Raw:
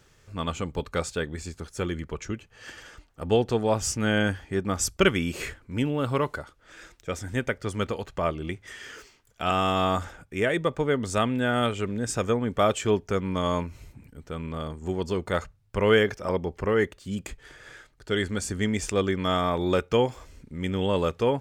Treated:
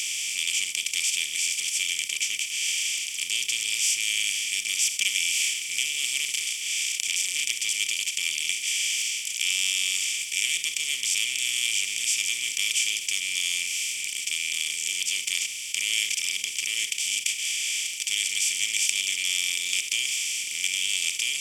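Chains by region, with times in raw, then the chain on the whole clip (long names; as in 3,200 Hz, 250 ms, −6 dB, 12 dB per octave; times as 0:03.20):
0:06.25–0:07.51: double-tracking delay 34 ms −3 dB + saturating transformer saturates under 2,000 Hz
whole clip: compressor on every frequency bin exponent 0.2; elliptic high-pass filter 2,400 Hz, stop band 40 dB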